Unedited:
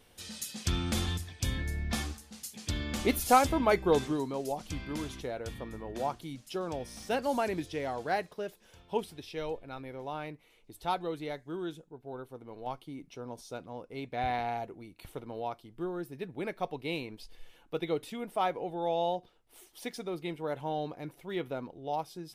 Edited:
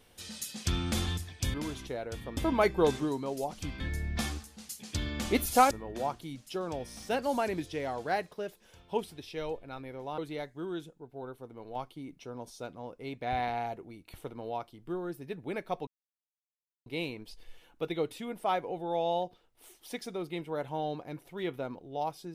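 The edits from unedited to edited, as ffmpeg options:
-filter_complex "[0:a]asplit=7[a][b][c][d][e][f][g];[a]atrim=end=1.542[h];[b]atrim=start=4.878:end=5.712[i];[c]atrim=start=3.448:end=4.882[j];[d]atrim=start=1.538:end=3.452[k];[e]atrim=start=5.708:end=10.182[l];[f]atrim=start=11.088:end=16.78,asetpts=PTS-STARTPTS,afade=t=out:st=5.688:d=0.004:c=hsin,apad=pad_dur=0.99[m];[g]atrim=start=16.78,asetpts=PTS-STARTPTS,afade=t=in:d=0.004:c=hsin[n];[h][i]acrossfade=d=0.004:c1=hsin:c2=hsin[o];[o][j]acrossfade=d=0.004:c1=hsin:c2=hsin[p];[p][k]acrossfade=d=0.004:c1=hsin:c2=hsin[q];[q][l]acrossfade=d=0.004:c1=hsin:c2=hsin[r];[m][n]concat=n=2:v=0:a=1[s];[r][s]acrossfade=d=0.004:c1=hsin:c2=hsin"

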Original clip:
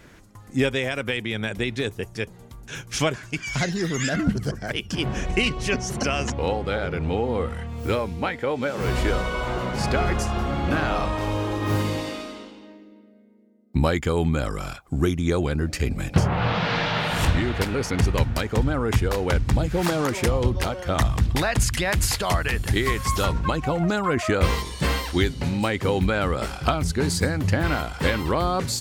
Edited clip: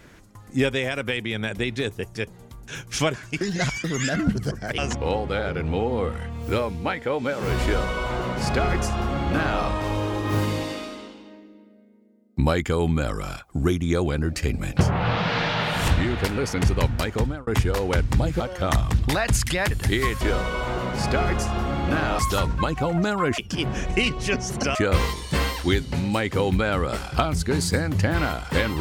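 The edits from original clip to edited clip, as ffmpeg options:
-filter_complex "[0:a]asplit=11[a][b][c][d][e][f][g][h][i][j][k];[a]atrim=end=3.412[l];[b]atrim=start=3.408:end=3.842,asetpts=PTS-STARTPTS,areverse[m];[c]atrim=start=3.838:end=4.782[n];[d]atrim=start=6.148:end=18.84,asetpts=PTS-STARTPTS,afade=t=out:st=12.392:d=0.3[o];[e]atrim=start=18.84:end=19.772,asetpts=PTS-STARTPTS,afade=t=in:d=0.004:c=hsin[p];[f]atrim=start=20.668:end=21.982[q];[g]atrim=start=22.548:end=23.052[r];[h]atrim=start=9.008:end=10.992[s];[i]atrim=start=23.048:end=24.242[t];[j]atrim=start=4.778:end=6.152[u];[k]atrim=start=24.238[v];[l][m]acrossfade=d=0.004:c1=hsin:c2=hsin[w];[w][n]acrossfade=d=0.004:c1=hsin:c2=hsin[x];[o][p]concat=n=2:v=0:a=1[y];[x][y]acrossfade=d=0.004:c1=hsin:c2=hsin[z];[z][q]acrossfade=d=0.004:c1=hsin:c2=hsin[aa];[aa][r]acrossfade=d=0.004:c1=hsin:c2=hsin[ab];[ab][s]acrossfade=d=0.004:c1=hsin:c2=hsin[ac];[ac][t]acrossfade=d=0.004:c1=hsin:c2=hsin[ad];[ad][u]acrossfade=d=0.004:c1=hsin:c2=hsin[ae];[ae][v]acrossfade=d=0.004:c1=hsin:c2=hsin"

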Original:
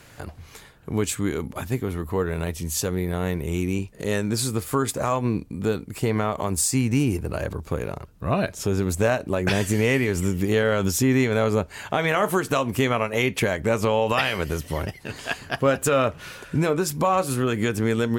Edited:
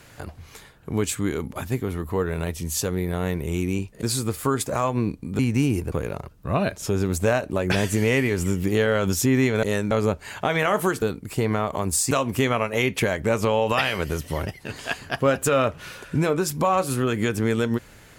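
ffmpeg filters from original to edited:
-filter_complex "[0:a]asplit=8[a][b][c][d][e][f][g][h];[a]atrim=end=4.032[i];[b]atrim=start=4.308:end=5.672[j];[c]atrim=start=6.758:end=7.292[k];[d]atrim=start=7.688:end=11.402[l];[e]atrim=start=4.028:end=4.312[m];[f]atrim=start=11.398:end=12.512[n];[g]atrim=start=5.668:end=6.762[o];[h]atrim=start=12.508[p];[i][j]acrossfade=d=0.004:c1=hsin:c2=hsin[q];[q][k]acrossfade=d=0.004:c1=hsin:c2=hsin[r];[r][l]acrossfade=d=0.004:c1=hsin:c2=hsin[s];[s][m]acrossfade=d=0.004:c1=hsin:c2=hsin[t];[t][n]acrossfade=d=0.004:c1=hsin:c2=hsin[u];[u][o]acrossfade=d=0.004:c1=hsin:c2=hsin[v];[v][p]acrossfade=d=0.004:c1=hsin:c2=hsin"

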